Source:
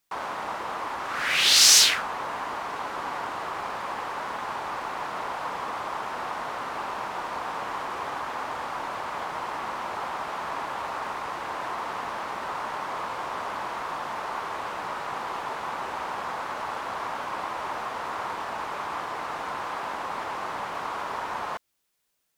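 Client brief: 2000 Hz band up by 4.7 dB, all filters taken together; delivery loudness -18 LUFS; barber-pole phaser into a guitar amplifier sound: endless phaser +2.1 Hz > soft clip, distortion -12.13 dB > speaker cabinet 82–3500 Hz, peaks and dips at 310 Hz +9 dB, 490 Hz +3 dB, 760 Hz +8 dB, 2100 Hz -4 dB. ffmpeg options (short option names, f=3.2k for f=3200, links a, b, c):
-filter_complex "[0:a]equalizer=f=2k:t=o:g=8,asplit=2[a][b];[b]afreqshift=2.1[c];[a][c]amix=inputs=2:normalize=1,asoftclip=threshold=-15.5dB,highpass=82,equalizer=f=310:t=q:w=4:g=9,equalizer=f=490:t=q:w=4:g=3,equalizer=f=760:t=q:w=4:g=8,equalizer=f=2.1k:t=q:w=4:g=-4,lowpass=f=3.5k:w=0.5412,lowpass=f=3.5k:w=1.3066,volume=12dB"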